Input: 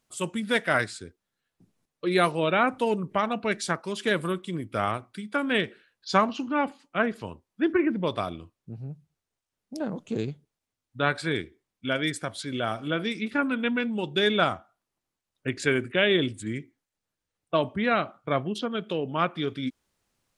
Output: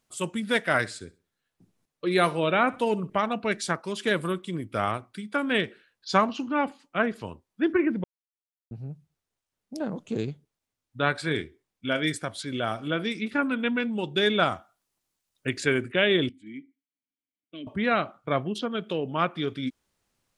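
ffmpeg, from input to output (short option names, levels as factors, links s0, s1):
-filter_complex "[0:a]asettb=1/sr,asplit=3[s0][s1][s2];[s0]atrim=end=0.784[s3];[s1]atrim=start=0.78:end=3.1,asetpts=PTS-STARTPTS,afade=t=in:d=0.004:c=qsin,afade=t=out:st=2.316:d=0.004:c=qsin,aecho=1:1:64|128|192:0.106|0.0328|0.0102,atrim=end_sample=102312[s4];[s2]atrim=start=3.096[s5];[s3][s4]acrossfade=d=0.004:c1=hsin:c2=qsin[s6];[s6][s5]acrossfade=d=0.004:c1=qsin:c2=hsin,asettb=1/sr,asplit=3[s7][s8][s9];[s7]atrim=end=11.254[s10];[s8]atrim=start=11.25:end=12.17,asetpts=PTS-STARTPTS,afade=t=in:d=0.004:c=qsin,afade=t=out:st=0.916:d=0.004:c=qsin,asplit=2[s11][s12];[s12]adelay=26,volume=0.266[s13];[s11][s13]amix=inputs=2:normalize=0,atrim=end_sample=40572[s14];[s9]atrim=start=12.166[s15];[s10][s14]acrossfade=d=0.004:c1=hsin:c2=qsin[s16];[s16][s15]acrossfade=d=0.004:c1=qsin:c2=hsin,asettb=1/sr,asplit=3[s17][s18][s19];[s17]atrim=end=14.524[s20];[s18]atrim=start=14.52:end=15.6,asetpts=PTS-STARTPTS,afade=t=in:d=0.004:c=qsin,afade=t=out:st=1.076:d=0.004:c=qsin,highshelf=f=3300:g=9[s21];[s19]atrim=start=15.596[s22];[s20][s21]acrossfade=d=0.004:c1=hsin:c2=qsin[s23];[s23][s22]acrossfade=d=0.004:c1=qsin:c2=hsin,asettb=1/sr,asplit=3[s24][s25][s26];[s24]atrim=end=16.294[s27];[s25]atrim=start=16.29:end=17.67,asetpts=PTS-STARTPTS,afade=t=in:d=0.004:c=qsin,afade=t=out:st=1.376:d=0.004:c=qsin,asplit=3[s28][s29][s30];[s28]bandpass=f=270:t=q:w=8,volume=1[s31];[s29]bandpass=f=2290:t=q:w=8,volume=0.501[s32];[s30]bandpass=f=3010:t=q:w=8,volume=0.355[s33];[s31][s32][s33]amix=inputs=3:normalize=0[s34];[s26]atrim=start=17.666[s35];[s27][s34]acrossfade=d=0.004:c1=hsin:c2=qsin[s36];[s36][s35]acrossfade=d=0.004:c1=qsin:c2=hsin,asplit=3[s37][s38][s39];[s37]atrim=end=8.04,asetpts=PTS-STARTPTS,afade=t=out:st=8.036:d=0.004:c=hsin[s40];[s38]atrim=start=8.04:end=8.71,asetpts=PTS-STARTPTS,volume=0[s41];[s39]atrim=start=8.71,asetpts=PTS-STARTPTS,afade=t=in:d=0.004:c=hsin[s42];[s40][s41][s42]concat=n=3:v=0:a=1"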